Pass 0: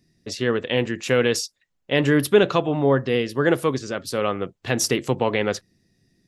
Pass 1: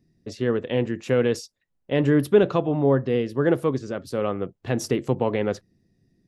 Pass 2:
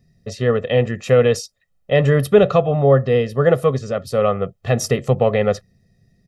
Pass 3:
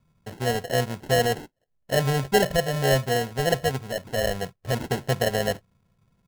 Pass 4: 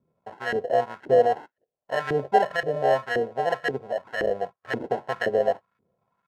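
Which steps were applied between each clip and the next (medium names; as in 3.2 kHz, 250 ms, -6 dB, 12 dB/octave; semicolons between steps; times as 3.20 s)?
tilt shelf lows +6 dB, about 1.2 kHz; trim -5.5 dB
comb 1.6 ms, depth 87%; trim +5 dB
sample-and-hold 37×; trim -8 dB
LFO band-pass saw up 1.9 Hz 340–1700 Hz; trim +7 dB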